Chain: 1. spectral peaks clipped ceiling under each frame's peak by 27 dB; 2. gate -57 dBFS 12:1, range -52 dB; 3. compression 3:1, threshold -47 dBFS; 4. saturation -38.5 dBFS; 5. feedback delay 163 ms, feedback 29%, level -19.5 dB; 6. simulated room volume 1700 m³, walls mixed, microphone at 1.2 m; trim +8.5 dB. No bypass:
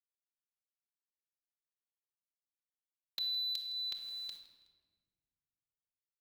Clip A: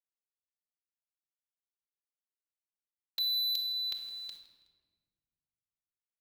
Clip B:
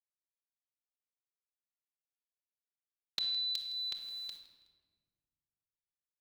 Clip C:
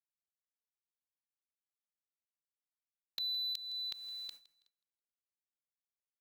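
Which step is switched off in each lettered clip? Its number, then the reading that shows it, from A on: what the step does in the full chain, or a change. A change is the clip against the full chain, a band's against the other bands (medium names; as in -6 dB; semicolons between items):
3, mean gain reduction 6.5 dB; 4, distortion -18 dB; 6, echo-to-direct -3.5 dB to -19.0 dB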